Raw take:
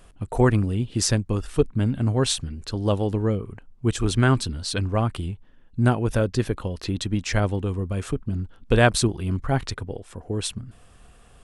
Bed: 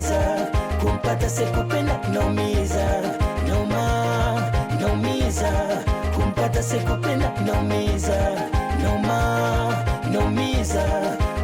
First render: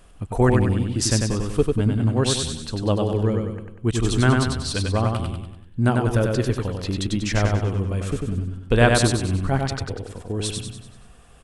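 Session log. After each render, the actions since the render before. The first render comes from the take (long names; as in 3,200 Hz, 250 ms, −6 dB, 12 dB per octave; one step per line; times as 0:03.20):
repeating echo 96 ms, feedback 48%, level −3.5 dB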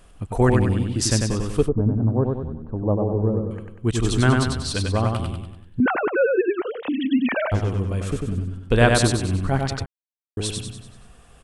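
0:01.68–0:03.51: low-pass filter 1,000 Hz 24 dB per octave
0:05.80–0:07.52: three sine waves on the formant tracks
0:09.86–0:10.37: silence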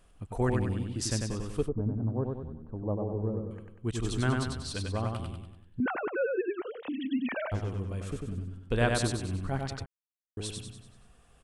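level −10.5 dB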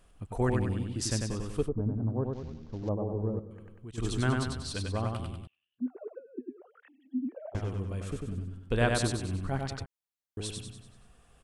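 0:02.33–0:02.89: variable-slope delta modulation 32 kbit/s
0:03.39–0:03.98: downward compressor 3 to 1, threshold −44 dBFS
0:05.47–0:07.55: envelope filter 250–3,400 Hz, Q 11, down, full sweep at −26.5 dBFS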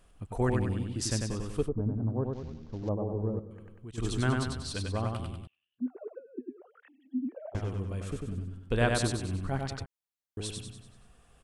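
no processing that can be heard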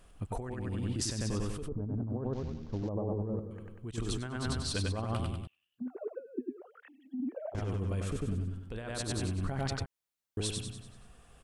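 compressor whose output falls as the input rises −34 dBFS, ratio −1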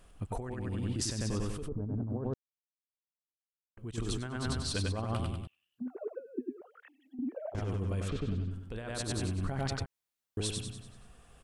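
0:02.34–0:03.77: silence
0:06.61–0:07.19: Bessel high-pass filter 480 Hz
0:08.08–0:08.51: low-pass with resonance 4,000 Hz, resonance Q 2.1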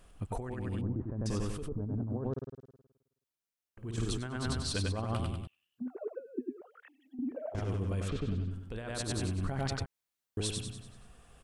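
0:00.81–0:01.26: inverse Chebyshev low-pass filter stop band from 4,800 Hz, stop band 70 dB
0:02.31–0:04.05: flutter between parallel walls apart 9.1 metres, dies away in 0.95 s
0:07.24–0:07.93: flutter between parallel walls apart 11.8 metres, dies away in 0.34 s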